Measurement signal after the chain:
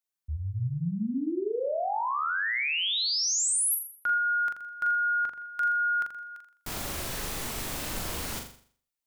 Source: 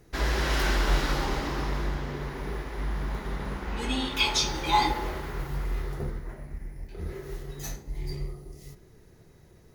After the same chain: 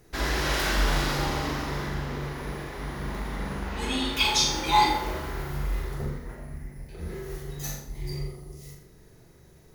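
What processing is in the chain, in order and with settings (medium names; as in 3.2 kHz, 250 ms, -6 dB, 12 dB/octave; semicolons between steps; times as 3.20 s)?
treble shelf 6.6 kHz +4.5 dB; hum notches 50/100/150/200/250/300/350/400/450/500 Hz; flutter echo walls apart 7.1 m, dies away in 0.5 s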